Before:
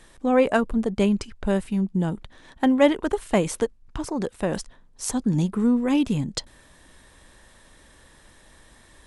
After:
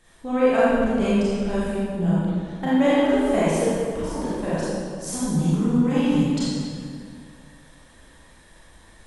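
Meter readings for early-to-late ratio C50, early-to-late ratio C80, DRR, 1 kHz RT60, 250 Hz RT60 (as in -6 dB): -5.5 dB, -2.5 dB, -10.5 dB, 2.1 s, 2.3 s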